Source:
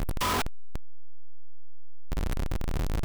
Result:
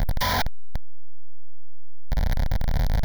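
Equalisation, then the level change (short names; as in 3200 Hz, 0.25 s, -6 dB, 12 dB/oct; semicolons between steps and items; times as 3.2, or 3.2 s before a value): fixed phaser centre 1800 Hz, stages 8; +7.5 dB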